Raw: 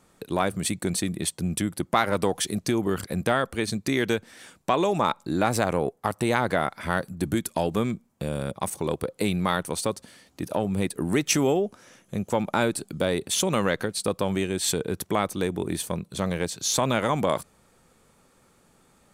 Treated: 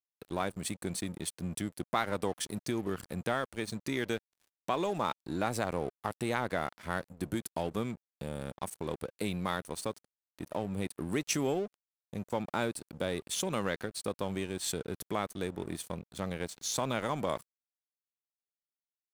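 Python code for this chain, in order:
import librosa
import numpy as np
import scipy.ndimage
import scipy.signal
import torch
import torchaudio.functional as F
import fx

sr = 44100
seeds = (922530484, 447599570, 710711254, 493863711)

y = np.sign(x) * np.maximum(np.abs(x) - 10.0 ** (-39.5 / 20.0), 0.0)
y = y * librosa.db_to_amplitude(-8.0)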